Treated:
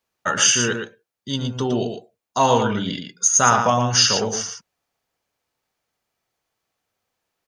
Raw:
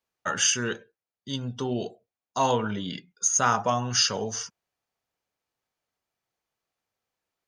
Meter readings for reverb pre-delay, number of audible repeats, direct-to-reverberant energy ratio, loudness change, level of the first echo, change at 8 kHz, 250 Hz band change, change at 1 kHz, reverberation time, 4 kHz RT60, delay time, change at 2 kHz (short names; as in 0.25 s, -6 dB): none, 1, none, +7.5 dB, -6.5 dB, +7.5 dB, +7.5 dB, +7.5 dB, none, none, 0.115 s, +7.5 dB